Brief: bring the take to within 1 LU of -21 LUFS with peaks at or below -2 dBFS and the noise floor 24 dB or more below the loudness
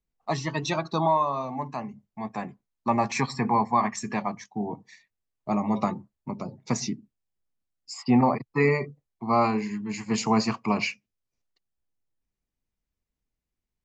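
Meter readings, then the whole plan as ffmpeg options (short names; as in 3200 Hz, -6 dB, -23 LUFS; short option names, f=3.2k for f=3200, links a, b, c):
loudness -27.0 LUFS; peak -10.0 dBFS; loudness target -21.0 LUFS
-> -af "volume=6dB"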